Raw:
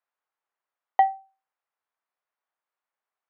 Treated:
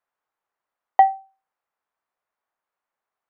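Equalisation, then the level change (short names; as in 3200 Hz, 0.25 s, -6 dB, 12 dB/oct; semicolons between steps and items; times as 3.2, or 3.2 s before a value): high shelf 2800 Hz -10 dB; +6.0 dB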